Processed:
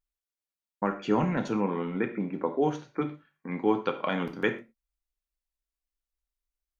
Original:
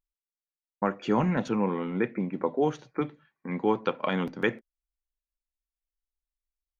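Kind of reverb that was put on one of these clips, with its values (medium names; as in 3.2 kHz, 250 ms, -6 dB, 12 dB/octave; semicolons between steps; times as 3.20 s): gated-style reverb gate 150 ms falling, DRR 6.5 dB; trim -1.5 dB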